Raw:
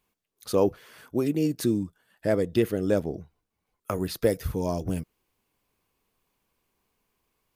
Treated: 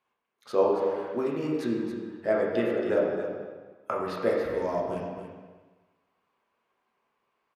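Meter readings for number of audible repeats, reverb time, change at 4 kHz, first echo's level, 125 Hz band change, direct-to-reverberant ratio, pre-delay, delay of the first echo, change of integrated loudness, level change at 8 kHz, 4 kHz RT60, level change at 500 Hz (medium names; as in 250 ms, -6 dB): 1, 1.4 s, -6.0 dB, -9.0 dB, -10.0 dB, -4.0 dB, 4 ms, 277 ms, -1.0 dB, under -10 dB, 1.2 s, +1.0 dB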